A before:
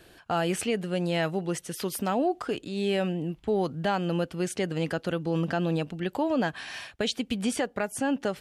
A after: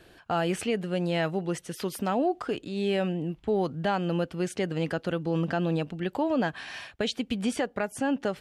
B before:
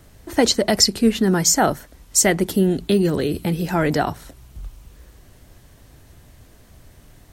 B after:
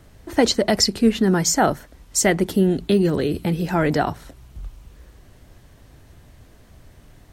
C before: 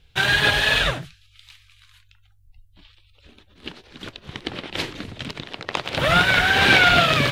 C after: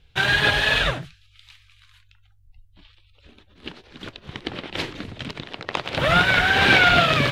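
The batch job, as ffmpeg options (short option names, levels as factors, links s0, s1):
-af "highshelf=f=5900:g=-7"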